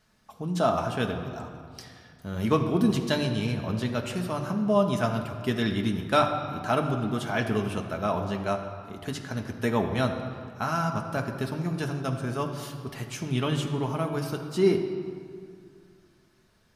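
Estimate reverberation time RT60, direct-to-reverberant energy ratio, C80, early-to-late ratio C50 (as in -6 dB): 2.2 s, 2.0 dB, 8.0 dB, 7.0 dB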